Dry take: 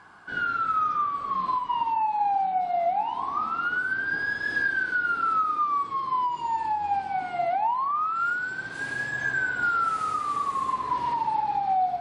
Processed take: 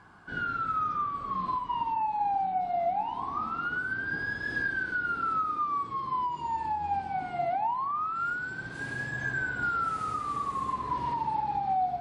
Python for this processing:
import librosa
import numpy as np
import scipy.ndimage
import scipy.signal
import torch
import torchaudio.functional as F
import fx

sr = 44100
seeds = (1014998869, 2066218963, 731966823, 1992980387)

y = fx.low_shelf(x, sr, hz=300.0, db=12.0)
y = y * 10.0 ** (-5.5 / 20.0)